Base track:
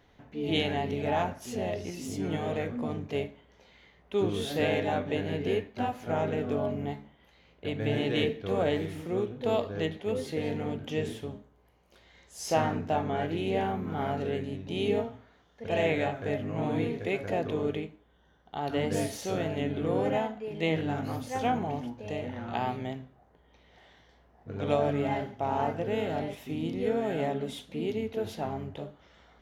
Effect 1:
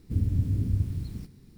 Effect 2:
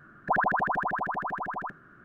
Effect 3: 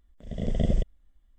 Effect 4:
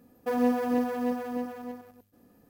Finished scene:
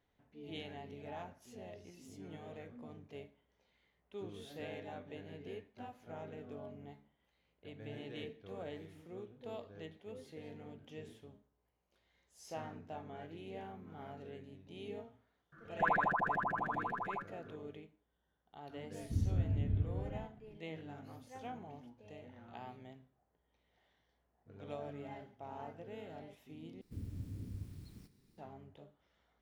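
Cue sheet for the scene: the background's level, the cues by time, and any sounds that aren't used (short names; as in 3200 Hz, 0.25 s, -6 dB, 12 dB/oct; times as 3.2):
base track -18 dB
15.52 add 2 -7.5 dB + comb 5.9 ms, depth 58%
19 add 1 -8 dB + steep low-pass 2200 Hz
26.81 replace with 1 -10 dB + low shelf 240 Hz -10.5 dB
not used: 3, 4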